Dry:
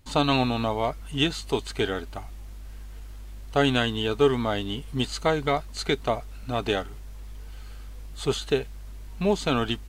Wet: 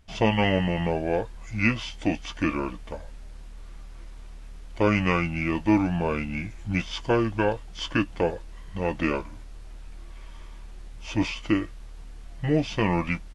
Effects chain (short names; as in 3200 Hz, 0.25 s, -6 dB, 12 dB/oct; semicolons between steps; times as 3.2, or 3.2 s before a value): high shelf 10000 Hz -7.5 dB; doubler 13 ms -12 dB; speed mistake 45 rpm record played at 33 rpm